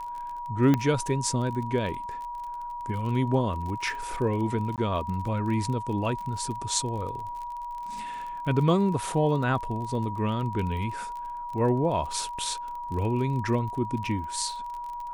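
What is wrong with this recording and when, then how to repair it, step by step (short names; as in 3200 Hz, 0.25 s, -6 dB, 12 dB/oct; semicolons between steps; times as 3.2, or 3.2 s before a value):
crackle 30/s -34 dBFS
tone 960 Hz -33 dBFS
0.74 pop -11 dBFS
4.76–4.78 gap 18 ms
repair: de-click; notch 960 Hz, Q 30; interpolate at 4.76, 18 ms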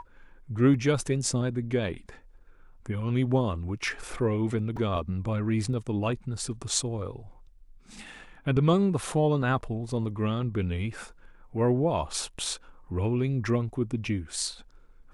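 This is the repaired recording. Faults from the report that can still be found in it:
0.74 pop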